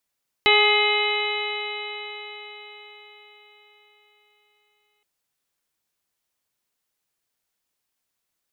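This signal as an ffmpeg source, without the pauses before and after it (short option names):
-f lavfi -i "aevalsrc='0.0944*pow(10,-3*t/4.87)*sin(2*PI*416.23*t)+0.0794*pow(10,-3*t/4.87)*sin(2*PI*833.83*t)+0.0531*pow(10,-3*t/4.87)*sin(2*PI*1254.16*t)+0.0168*pow(10,-3*t/4.87)*sin(2*PI*1678.58*t)+0.133*pow(10,-3*t/4.87)*sin(2*PI*2108.41*t)+0.0708*pow(10,-3*t/4.87)*sin(2*PI*2544.94*t)+0.106*pow(10,-3*t/4.87)*sin(2*PI*2989.45*t)+0.0211*pow(10,-3*t/4.87)*sin(2*PI*3443.15*t)+0.075*pow(10,-3*t/4.87)*sin(2*PI*3907.24*t)':d=4.57:s=44100"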